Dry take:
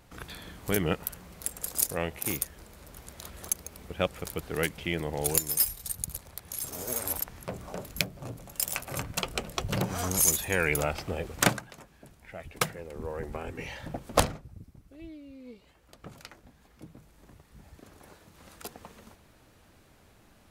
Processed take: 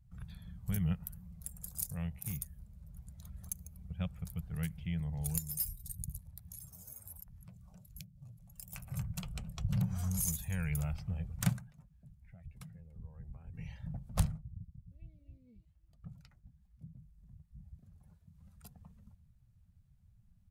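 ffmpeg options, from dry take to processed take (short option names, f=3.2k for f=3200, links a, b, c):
-filter_complex "[0:a]asettb=1/sr,asplit=3[a][b][c];[a]atrim=end=6.564[d];[b]atrim=start=6.56:end=8.73,asetpts=PTS-STARTPTS,afade=t=in:d=0.004:c=qsin,afade=t=out:st=2.166:d=0.004:c=qsin,acrossover=split=670|2900[e][f][g];[e]acompressor=threshold=-51dB:ratio=4[h];[f]acompressor=threshold=-52dB:ratio=4[i];[g]acompressor=threshold=-37dB:ratio=4[j];[h][i][j]amix=inputs=3:normalize=0[k];[c]atrim=start=8.726[l];[d][k]acrossfade=d=0.004:c1=hsin:c2=qsin[m];[m][l]acrossfade=d=0.004:c1=qsin:c2=hsin,asettb=1/sr,asplit=3[n][o][p];[n]atrim=end=11.624[q];[o]atrim=start=11.62:end=13.54,asetpts=PTS-STARTPTS,afade=t=in:d=0.004:c=qsin,afade=t=out:st=1.916:d=0.004:c=qsin,acompressor=threshold=-45dB:ratio=2:attack=3.2:release=140:knee=1:detection=peak[r];[p]atrim=start=13.536[s];[q][r]acrossfade=d=0.004:c1=hsin:c2=qsin[t];[t][s]acrossfade=d=0.004:c1=qsin:c2=hsin,asplit=2[u][v];[v]afade=t=in:st=14.6:d=0.01,afade=t=out:st=15.11:d=0.01,aecho=0:1:270|540|810|1080|1350|1620:0.530884|0.265442|0.132721|0.0663606|0.0331803|0.0165901[w];[u][w]amix=inputs=2:normalize=0,afftdn=nr=12:nf=-49,firequalizer=gain_entry='entry(170,0);entry(300,-29);entry(710,-20);entry(8600,-13);entry(14000,-11)':delay=0.05:min_phase=1,volume=1dB"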